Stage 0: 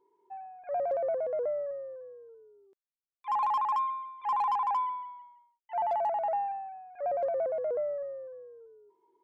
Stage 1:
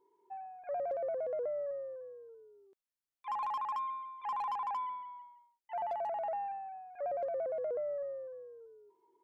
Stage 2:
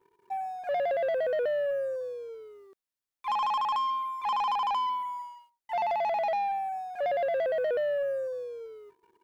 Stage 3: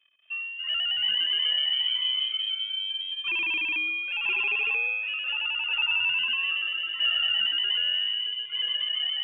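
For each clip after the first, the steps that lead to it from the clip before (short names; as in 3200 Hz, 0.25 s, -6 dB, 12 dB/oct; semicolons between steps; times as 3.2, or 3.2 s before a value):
dynamic EQ 900 Hz, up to -5 dB, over -42 dBFS, Q 2.7; compressor, threshold -32 dBFS, peak gain reduction 5 dB; gain -1.5 dB
sample leveller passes 2; gain +4.5 dB
echoes that change speed 0.223 s, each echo -3 st, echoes 3; inverted band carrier 3500 Hz; low shelf 380 Hz -5 dB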